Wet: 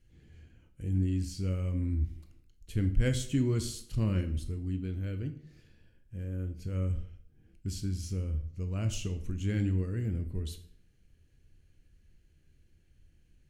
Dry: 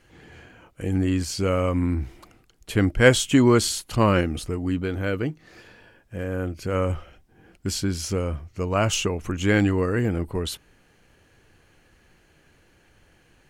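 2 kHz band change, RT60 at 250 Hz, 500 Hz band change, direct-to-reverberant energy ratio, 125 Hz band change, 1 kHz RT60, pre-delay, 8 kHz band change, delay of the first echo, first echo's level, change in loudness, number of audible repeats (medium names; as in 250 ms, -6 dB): -20.0 dB, 0.65 s, -18.0 dB, 7.5 dB, -4.5 dB, 0.60 s, 12 ms, -14.0 dB, no echo, no echo, -10.0 dB, no echo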